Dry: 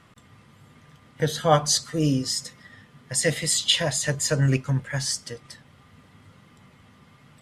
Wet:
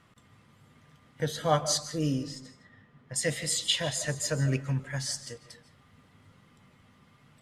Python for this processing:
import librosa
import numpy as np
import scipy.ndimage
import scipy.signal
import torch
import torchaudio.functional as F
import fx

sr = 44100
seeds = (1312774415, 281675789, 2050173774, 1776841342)

y = fx.lowpass(x, sr, hz=1600.0, slope=6, at=(2.23, 3.16))
y = fx.rev_freeverb(y, sr, rt60_s=0.48, hf_ratio=0.45, predelay_ms=110, drr_db=12.5)
y = F.gain(torch.from_numpy(y), -6.5).numpy()